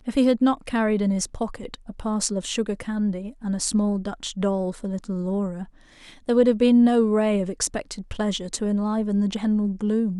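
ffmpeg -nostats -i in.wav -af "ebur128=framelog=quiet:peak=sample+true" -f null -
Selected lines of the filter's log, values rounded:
Integrated loudness:
  I:         -23.5 LUFS
  Threshold: -33.8 LUFS
Loudness range:
  LRA:         4.8 LU
  Threshold: -43.9 LUFS
  LRA low:   -26.6 LUFS
  LRA high:  -21.8 LUFS
Sample peak:
  Peak:       -6.0 dBFS
True peak:
  Peak:       -5.5 dBFS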